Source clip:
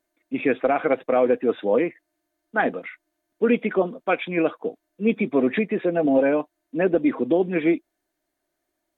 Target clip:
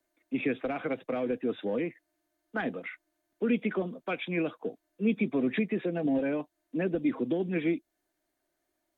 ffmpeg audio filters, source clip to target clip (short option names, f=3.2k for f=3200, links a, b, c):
-filter_complex "[0:a]acrossover=split=240|3000[a][b][c];[b]acompressor=threshold=-31dB:ratio=3[d];[a][d][c]amix=inputs=3:normalize=0,acrossover=split=120|630|980[e][f][g][h];[g]asoftclip=type=tanh:threshold=-40dB[i];[e][f][i][h]amix=inputs=4:normalize=0,volume=-2dB"